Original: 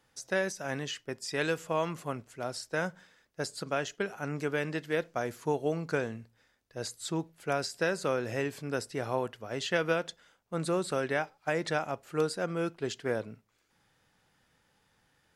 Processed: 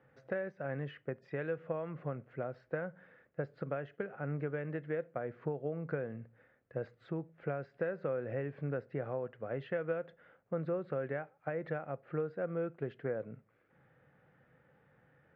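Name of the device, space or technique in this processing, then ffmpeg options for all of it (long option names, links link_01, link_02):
bass amplifier: -af "acompressor=threshold=-42dB:ratio=4,highpass=80,equalizer=frequency=140:width_type=q:width=4:gain=8,equalizer=frequency=520:width_type=q:width=4:gain=7,equalizer=frequency=960:width_type=q:width=4:gain=-7,lowpass=frequency=2000:width=0.5412,lowpass=frequency=2000:width=1.3066,volume=3.5dB"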